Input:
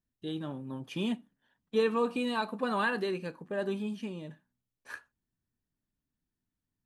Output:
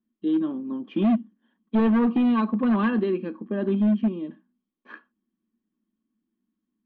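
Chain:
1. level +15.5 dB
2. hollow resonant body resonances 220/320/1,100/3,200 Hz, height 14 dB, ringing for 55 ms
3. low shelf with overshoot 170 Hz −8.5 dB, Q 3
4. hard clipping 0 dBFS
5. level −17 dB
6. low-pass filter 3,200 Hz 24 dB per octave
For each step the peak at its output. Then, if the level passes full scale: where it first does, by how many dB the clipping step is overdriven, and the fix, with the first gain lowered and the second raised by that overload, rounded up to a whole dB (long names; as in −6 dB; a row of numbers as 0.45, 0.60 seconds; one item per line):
−2.0, +6.0, +10.0, 0.0, −17.0, −16.5 dBFS
step 2, 10.0 dB
step 1 +5.5 dB, step 5 −7 dB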